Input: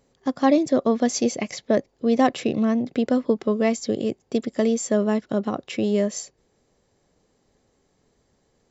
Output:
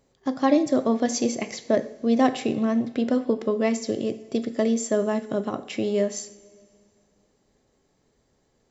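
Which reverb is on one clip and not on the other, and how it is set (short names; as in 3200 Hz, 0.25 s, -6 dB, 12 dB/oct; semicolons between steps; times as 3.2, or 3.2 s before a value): two-slope reverb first 0.48 s, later 2.3 s, from -16 dB, DRR 9 dB; gain -2 dB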